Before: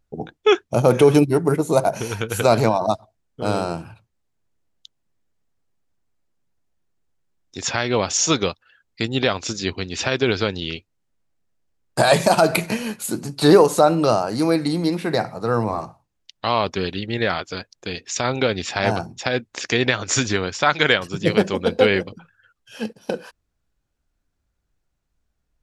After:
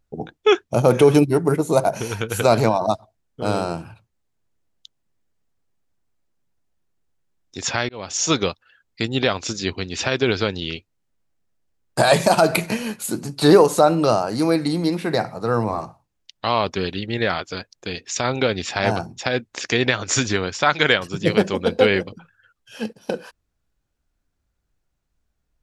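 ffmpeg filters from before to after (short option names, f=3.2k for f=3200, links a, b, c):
-filter_complex "[0:a]asplit=2[a][b];[a]atrim=end=7.89,asetpts=PTS-STARTPTS,afade=t=out:st=7.886:d=0.004:c=hsin[c];[b]atrim=start=7.89,asetpts=PTS-STARTPTS,afade=t=in:d=0.44[d];[c][d]concat=n=2:v=0:a=1"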